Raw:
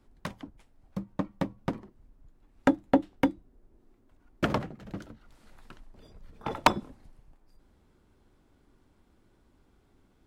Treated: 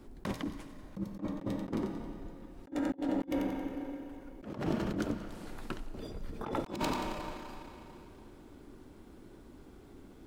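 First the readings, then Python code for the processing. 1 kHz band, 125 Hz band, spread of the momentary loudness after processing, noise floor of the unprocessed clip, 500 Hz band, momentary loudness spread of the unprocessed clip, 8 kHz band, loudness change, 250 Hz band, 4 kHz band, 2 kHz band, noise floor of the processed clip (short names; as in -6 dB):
-8.0 dB, -2.5 dB, 20 LU, -66 dBFS, -4.5 dB, 17 LU, -3.0 dB, -7.0 dB, -3.0 dB, -6.0 dB, -8.0 dB, -54 dBFS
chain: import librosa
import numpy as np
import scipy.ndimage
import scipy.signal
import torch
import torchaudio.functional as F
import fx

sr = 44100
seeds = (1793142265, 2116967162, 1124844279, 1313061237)

y = fx.peak_eq(x, sr, hz=330.0, db=7.0, octaves=1.5)
y = fx.echo_wet_highpass(y, sr, ms=90, feedback_pct=52, hz=3800.0, wet_db=-12.0)
y = fx.rev_schroeder(y, sr, rt60_s=2.8, comb_ms=28, drr_db=16.5)
y = fx.over_compress(y, sr, threshold_db=-38.0, ratio=-1.0)
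y = fx.high_shelf(y, sr, hz=10000.0, db=3.5)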